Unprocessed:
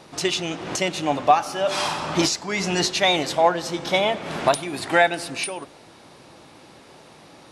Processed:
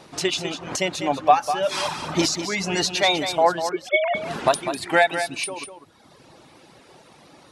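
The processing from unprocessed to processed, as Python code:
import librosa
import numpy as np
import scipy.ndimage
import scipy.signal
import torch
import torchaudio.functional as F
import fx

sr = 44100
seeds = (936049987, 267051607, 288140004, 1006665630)

p1 = fx.sine_speech(x, sr, at=(3.69, 4.15))
p2 = fx.dereverb_blind(p1, sr, rt60_s=1.3)
y = p2 + fx.echo_single(p2, sr, ms=199, db=-9.0, dry=0)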